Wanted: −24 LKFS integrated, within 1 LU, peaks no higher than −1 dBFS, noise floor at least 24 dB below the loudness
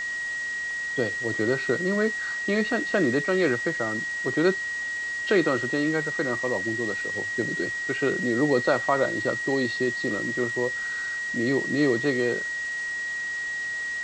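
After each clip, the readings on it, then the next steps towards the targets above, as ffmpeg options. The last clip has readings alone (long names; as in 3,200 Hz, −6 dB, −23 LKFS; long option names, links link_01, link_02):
interfering tone 1,900 Hz; level of the tone −28 dBFS; background noise floor −31 dBFS; target noise floor −50 dBFS; integrated loudness −25.5 LKFS; sample peak −9.0 dBFS; target loudness −24.0 LKFS
→ -af "bandreject=frequency=1900:width=30"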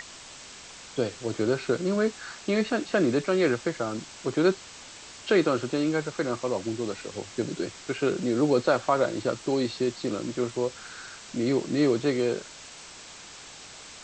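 interfering tone none found; background noise floor −46 dBFS; target noise floor −52 dBFS
→ -af "afftdn=noise_reduction=6:noise_floor=-46"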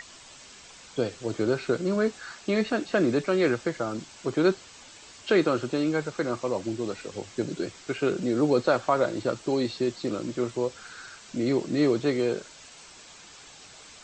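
background noise floor −49 dBFS; target noise floor −52 dBFS
→ -af "afftdn=noise_reduction=6:noise_floor=-49"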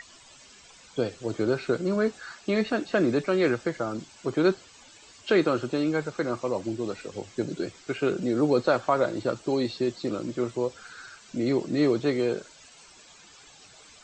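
background noise floor −53 dBFS; integrated loudness −27.5 LKFS; sample peak −9.0 dBFS; target loudness −24.0 LKFS
→ -af "volume=3.5dB"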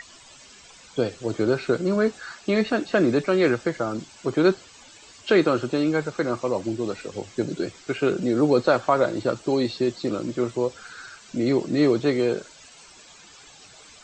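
integrated loudness −24.0 LKFS; sample peak −5.5 dBFS; background noise floor −49 dBFS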